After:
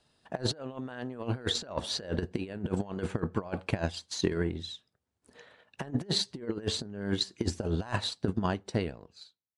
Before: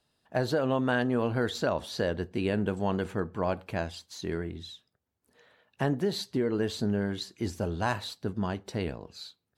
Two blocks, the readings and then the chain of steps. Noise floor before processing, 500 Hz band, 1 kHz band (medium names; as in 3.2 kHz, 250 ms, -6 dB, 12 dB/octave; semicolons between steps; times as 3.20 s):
-81 dBFS, -5.5 dB, -5.5 dB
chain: fade out at the end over 1.56 s; compressor with a negative ratio -33 dBFS, ratio -0.5; resampled via 22.05 kHz; transient shaper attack +6 dB, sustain -5 dB